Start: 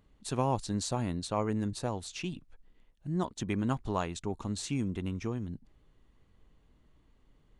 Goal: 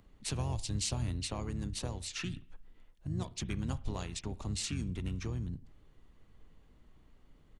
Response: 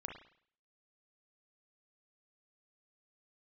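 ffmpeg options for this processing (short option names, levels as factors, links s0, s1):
-filter_complex "[0:a]asplit=3[s0][s1][s2];[s1]asetrate=22050,aresample=44100,atempo=2,volume=0.282[s3];[s2]asetrate=29433,aresample=44100,atempo=1.49831,volume=0.501[s4];[s0][s3][s4]amix=inputs=3:normalize=0,acrossover=split=120|3000[s5][s6][s7];[s6]acompressor=threshold=0.00708:ratio=4[s8];[s5][s8][s7]amix=inputs=3:normalize=0,asplit=2[s9][s10];[1:a]atrim=start_sample=2205[s11];[s10][s11]afir=irnorm=-1:irlink=0,volume=0.335[s12];[s9][s12]amix=inputs=2:normalize=0"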